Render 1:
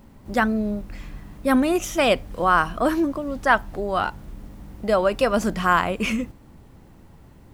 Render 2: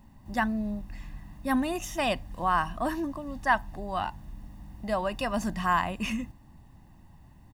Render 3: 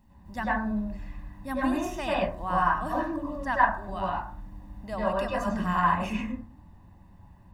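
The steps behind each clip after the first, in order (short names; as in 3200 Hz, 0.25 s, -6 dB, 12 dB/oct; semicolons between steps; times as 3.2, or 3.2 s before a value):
comb 1.1 ms, depth 69%; gain -8.5 dB
reverb RT60 0.45 s, pre-delay 87 ms, DRR -7 dB; gain -7 dB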